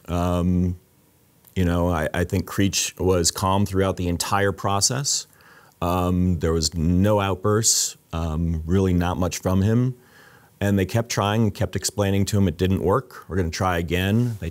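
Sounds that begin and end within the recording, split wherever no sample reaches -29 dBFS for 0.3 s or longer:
1.47–5.22 s
5.82–9.91 s

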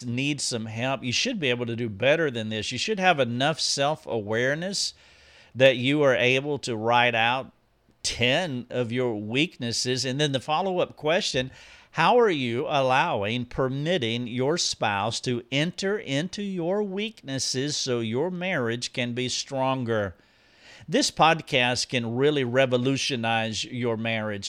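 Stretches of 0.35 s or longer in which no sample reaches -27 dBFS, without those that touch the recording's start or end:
4.89–5.59 s
7.41–8.05 s
11.45–11.98 s
20.08–20.92 s

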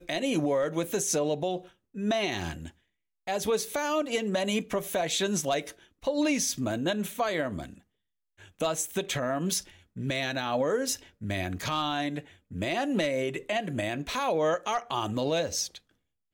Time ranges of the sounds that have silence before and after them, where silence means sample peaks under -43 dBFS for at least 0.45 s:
3.27–7.78 s
8.42–15.78 s

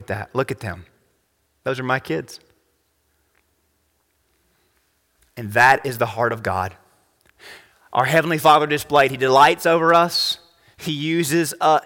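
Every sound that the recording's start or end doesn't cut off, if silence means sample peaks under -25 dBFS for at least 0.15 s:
1.66–2.20 s
5.38–6.67 s
7.93–10.34 s

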